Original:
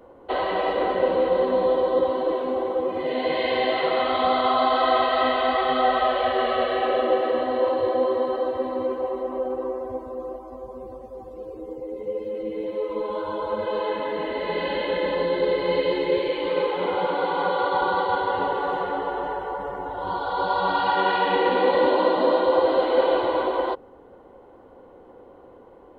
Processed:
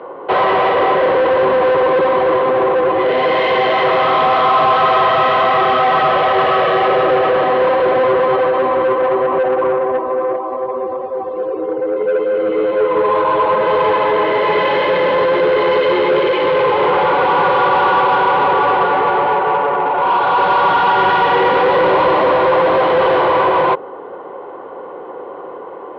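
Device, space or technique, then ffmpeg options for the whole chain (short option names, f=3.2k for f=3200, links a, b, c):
overdrive pedal into a guitar cabinet: -filter_complex "[0:a]asplit=2[a][b];[b]highpass=f=720:p=1,volume=27dB,asoftclip=type=tanh:threshold=-7.5dB[c];[a][c]amix=inputs=2:normalize=0,lowpass=f=2.3k:p=1,volume=-6dB,highpass=100,equalizer=f=160:t=q:w=4:g=5,equalizer=f=240:t=q:w=4:g=-6,equalizer=f=400:t=q:w=4:g=5,equalizer=f=1.1k:t=q:w=4:g=6,lowpass=f=3.6k:w=0.5412,lowpass=f=3.6k:w=1.3066"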